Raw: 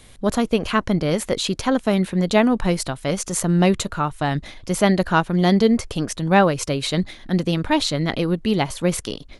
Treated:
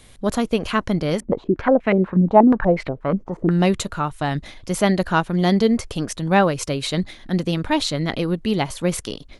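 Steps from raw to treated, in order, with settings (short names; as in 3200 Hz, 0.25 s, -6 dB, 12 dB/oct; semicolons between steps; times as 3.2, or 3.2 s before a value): 1.2–3.51 stepped low-pass 8.3 Hz 250–2200 Hz; gain -1 dB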